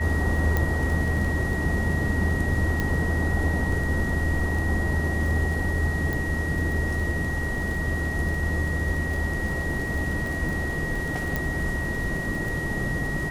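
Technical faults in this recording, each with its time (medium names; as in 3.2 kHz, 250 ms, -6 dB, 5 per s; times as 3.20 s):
crackle 17 per s -29 dBFS
whine 1.9 kHz -30 dBFS
0.57 s: pop -11 dBFS
2.80 s: pop -12 dBFS
6.13 s: pop
11.36 s: pop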